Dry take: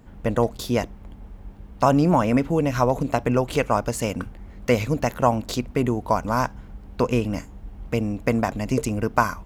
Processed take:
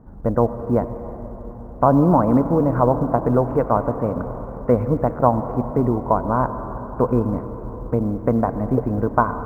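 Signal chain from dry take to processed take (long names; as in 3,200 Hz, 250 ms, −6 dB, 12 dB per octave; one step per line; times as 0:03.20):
inverse Chebyshev low-pass filter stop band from 3,300 Hz, stop band 50 dB
convolution reverb RT60 4.9 s, pre-delay 72 ms, DRR 10 dB
floating-point word with a short mantissa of 6 bits
level +3 dB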